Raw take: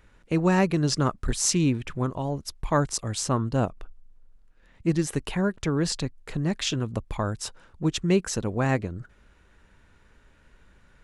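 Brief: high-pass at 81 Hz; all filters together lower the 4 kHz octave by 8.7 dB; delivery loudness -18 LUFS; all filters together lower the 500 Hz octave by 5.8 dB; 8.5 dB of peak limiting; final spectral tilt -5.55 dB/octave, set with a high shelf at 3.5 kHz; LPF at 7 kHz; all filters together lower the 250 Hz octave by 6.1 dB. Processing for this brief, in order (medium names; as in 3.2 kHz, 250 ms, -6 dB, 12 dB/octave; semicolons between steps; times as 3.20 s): high-pass 81 Hz; low-pass 7 kHz; peaking EQ 250 Hz -8 dB; peaking EQ 500 Hz -4.5 dB; treble shelf 3.5 kHz -7.5 dB; peaking EQ 4 kHz -5 dB; trim +16 dB; peak limiter -6 dBFS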